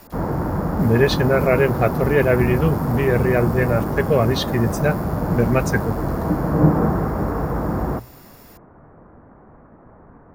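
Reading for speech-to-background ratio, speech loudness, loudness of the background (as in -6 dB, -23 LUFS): 3.0 dB, -20.0 LUFS, -23.0 LUFS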